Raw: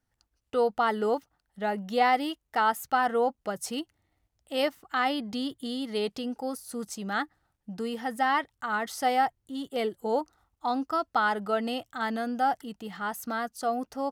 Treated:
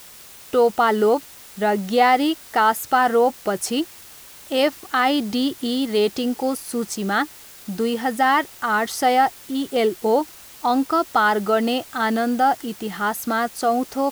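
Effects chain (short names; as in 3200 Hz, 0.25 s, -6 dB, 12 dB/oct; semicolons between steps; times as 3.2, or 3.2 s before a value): bell 360 Hz +8.5 dB 0.31 oct; in parallel at -3 dB: limiter -23 dBFS, peak gain reduction 11 dB; on the sum: requantised 8-bit, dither triangular; gain +5 dB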